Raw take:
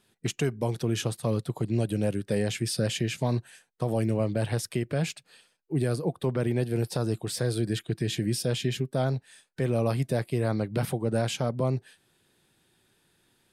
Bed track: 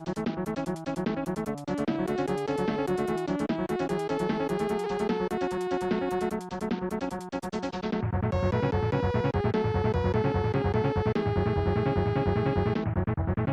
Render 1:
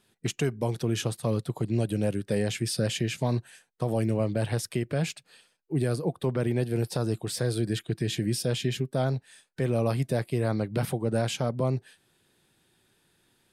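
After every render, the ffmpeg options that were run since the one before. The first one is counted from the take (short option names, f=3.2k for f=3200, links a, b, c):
-af anull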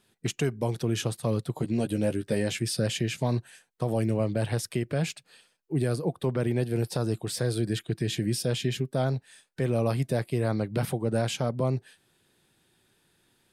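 -filter_complex "[0:a]asettb=1/sr,asplit=3[a][b][c];[a]atrim=end=1.564[d];[b]atrim=start=1.56:end=2.59,asetpts=PTS-STARTPTS,afade=t=in:d=0.004:c=qsin,afade=t=out:st=1.026:d=0.004:c=qsin,asplit=2[e][f];[f]adelay=13,volume=-6dB[g];[e][g]amix=inputs=2:normalize=0,atrim=end_sample=45423[h];[c]atrim=start=2.586[i];[d][h]acrossfade=d=0.004:c1=hsin:c2=qsin[j];[j][i]acrossfade=d=0.004:c1=qsin:c2=hsin"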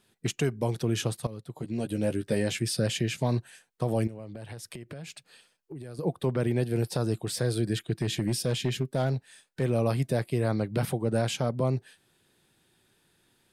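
-filter_complex "[0:a]asettb=1/sr,asplit=3[a][b][c];[a]atrim=end=4.074[d];[b]atrim=start=4.07:end=5.99,asetpts=PTS-STARTPTS,afade=t=in:d=0.004:c=qsin,afade=t=out:st=1.916:d=0.004:c=qsin,acompressor=threshold=-37dB:ratio=10:attack=3.2:release=140:knee=1:detection=peak[e];[c]atrim=start=5.986[f];[d][e]acrossfade=d=0.004:c1=hsin:c2=qsin[g];[g][f]acrossfade=d=0.004:c1=qsin:c2=hsin,asettb=1/sr,asplit=3[h][i][j];[h]atrim=end=8.014[k];[i]atrim=start=8.01:end=9.63,asetpts=PTS-STARTPTS,afade=t=in:d=0.004:c=qsin,afade=t=out:st=1.616:d=0.004:c=qsin,volume=20.5dB,asoftclip=hard,volume=-20.5dB[l];[j]atrim=start=9.626[m];[k][l]acrossfade=d=0.004:c1=hsin:c2=qsin[n];[n][m]acrossfade=d=0.004:c1=qsin:c2=hsin,asplit=2[o][p];[o]atrim=end=1.27,asetpts=PTS-STARTPTS,afade=t=out:st=1.266:d=0.004:c=hsin:silence=0.141254[q];[p]atrim=start=1.27,asetpts=PTS-STARTPTS,afade=t=in:d=0.93:silence=0.141254[r];[q][r]concat=n=2:v=0:a=1"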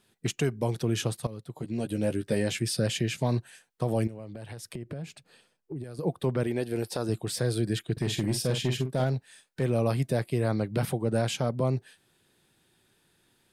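-filter_complex "[0:a]asettb=1/sr,asplit=3[a][b][c];[a]atrim=end=4.734[d];[b]atrim=start=4.73:end=5.84,asetpts=PTS-STARTPTS,afade=t=in:d=0.004:c=qsin,afade=t=out:st=1.106:d=0.004:c=qsin,tiltshelf=f=970:g=5[e];[c]atrim=start=5.836[f];[d][e]acrossfade=d=0.004:c1=hsin:c2=qsin[g];[g][f]acrossfade=d=0.004:c1=qsin:c2=hsin,asettb=1/sr,asplit=3[h][i][j];[h]atrim=end=6.434[k];[i]atrim=start=6.43:end=7.09,asetpts=PTS-STARTPTS,afade=t=in:d=0.004:c=qsin,afade=t=out:st=0.656:d=0.004:c=qsin,equalizer=f=140:t=o:w=0.77:g=-11.5[l];[j]atrim=start=7.086[m];[k][l]acrossfade=d=0.004:c1=hsin:c2=qsin[n];[n][m]acrossfade=d=0.004:c1=qsin:c2=hsin,asettb=1/sr,asplit=3[o][p][q];[o]atrim=end=7.924[r];[p]atrim=start=7.92:end=9.04,asetpts=PTS-STARTPTS,afade=t=in:d=0.004:c=qsin,afade=t=out:st=1.116:d=0.004:c=qsin,asplit=2[s][t];[t]adelay=47,volume=-8dB[u];[s][u]amix=inputs=2:normalize=0,atrim=end_sample=49392[v];[q]atrim=start=9.036[w];[r][v]acrossfade=d=0.004:c1=hsin:c2=qsin[x];[x][w]acrossfade=d=0.004:c1=qsin:c2=hsin"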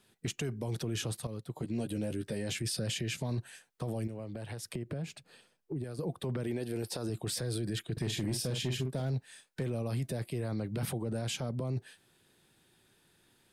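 -filter_complex "[0:a]alimiter=level_in=2dB:limit=-24dB:level=0:latency=1:release=24,volume=-2dB,acrossover=split=360|3000[a][b][c];[b]acompressor=threshold=-39dB:ratio=6[d];[a][d][c]amix=inputs=3:normalize=0"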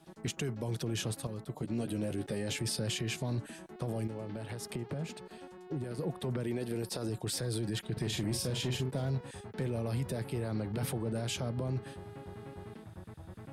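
-filter_complex "[1:a]volume=-20.5dB[a];[0:a][a]amix=inputs=2:normalize=0"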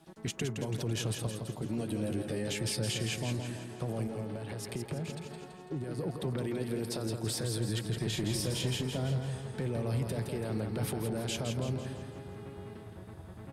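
-af "aecho=1:1:166|332|498|664|830|996:0.501|0.256|0.13|0.0665|0.0339|0.0173"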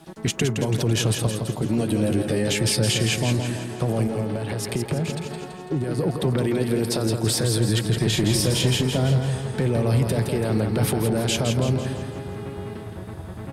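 -af "volume=12dB"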